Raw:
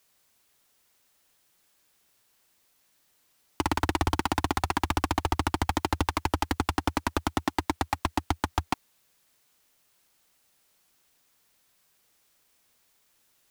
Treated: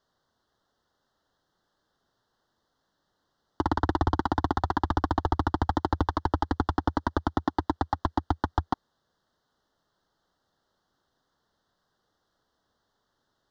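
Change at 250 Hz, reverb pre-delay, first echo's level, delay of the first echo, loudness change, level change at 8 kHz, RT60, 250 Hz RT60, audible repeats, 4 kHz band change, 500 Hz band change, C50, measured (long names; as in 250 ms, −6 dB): +1.5 dB, no reverb audible, no echo audible, no echo audible, +0.5 dB, below −15 dB, no reverb audible, no reverb audible, no echo audible, −8.0 dB, +1.5 dB, no reverb audible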